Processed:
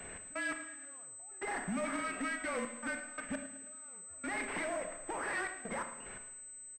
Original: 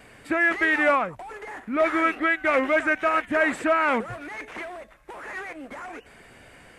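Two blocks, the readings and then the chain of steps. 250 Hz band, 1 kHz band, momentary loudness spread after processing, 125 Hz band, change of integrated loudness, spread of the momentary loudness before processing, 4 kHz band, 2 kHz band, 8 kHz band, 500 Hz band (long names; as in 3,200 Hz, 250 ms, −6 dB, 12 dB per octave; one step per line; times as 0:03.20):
−13.0 dB, −15.5 dB, 10 LU, −6.5 dB, −17.0 dB, 18 LU, −11.5 dB, −15.5 dB, +8.0 dB, −16.5 dB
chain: hearing-aid frequency compression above 3,100 Hz 1.5 to 1
downward compressor 5 to 1, threshold −31 dBFS, peak gain reduction 13.5 dB
brickwall limiter −27 dBFS, peak gain reduction 5 dB
asymmetric clip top −35.5 dBFS, bottom −32.5 dBFS
gate pattern "x.x.....xxxxxxx." 85 BPM −24 dB
frequency shifter −33 Hz
repeating echo 108 ms, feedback 54%, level −15 dB
four-comb reverb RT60 0.74 s, combs from 26 ms, DRR 6.5 dB
switching amplifier with a slow clock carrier 8,100 Hz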